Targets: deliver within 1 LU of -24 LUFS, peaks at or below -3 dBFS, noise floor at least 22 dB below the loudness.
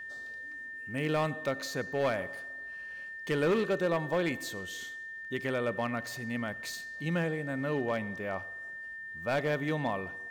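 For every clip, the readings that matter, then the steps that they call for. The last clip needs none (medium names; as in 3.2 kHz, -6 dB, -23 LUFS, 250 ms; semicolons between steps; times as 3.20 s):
clipped samples 0.9%; clipping level -23.0 dBFS; steady tone 1.8 kHz; tone level -40 dBFS; loudness -33.5 LUFS; peak level -23.0 dBFS; loudness target -24.0 LUFS
-> clip repair -23 dBFS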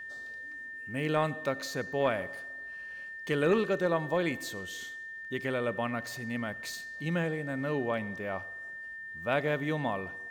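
clipped samples 0.0%; steady tone 1.8 kHz; tone level -40 dBFS
-> band-stop 1.8 kHz, Q 30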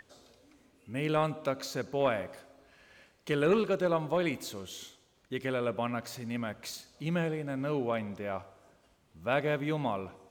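steady tone not found; loudness -32.5 LUFS; peak level -14.5 dBFS; loudness target -24.0 LUFS
-> trim +8.5 dB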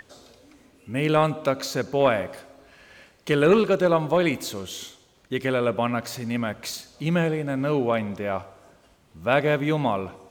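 loudness -24.0 LUFS; peak level -6.0 dBFS; noise floor -59 dBFS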